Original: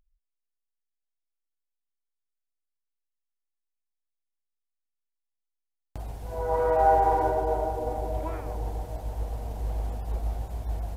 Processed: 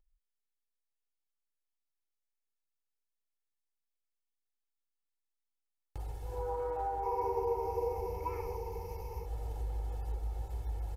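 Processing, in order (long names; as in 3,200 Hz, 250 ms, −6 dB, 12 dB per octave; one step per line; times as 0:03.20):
comb filter 2.3 ms, depth 95%
downward compressor 12 to 1, threshold −24 dBFS, peak gain reduction 12 dB
0:07.03–0:09.26: EQ curve with evenly spaced ripples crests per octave 0.82, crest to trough 17 dB
level −8.5 dB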